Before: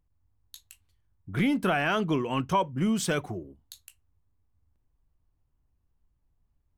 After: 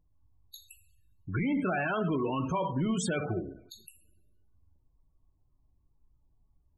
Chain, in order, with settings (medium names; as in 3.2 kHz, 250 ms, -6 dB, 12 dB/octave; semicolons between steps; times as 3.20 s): two-slope reverb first 0.6 s, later 1.6 s, from -18 dB, DRR 6 dB; loudest bins only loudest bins 32; peak limiter -25 dBFS, peak gain reduction 10.5 dB; trim +2.5 dB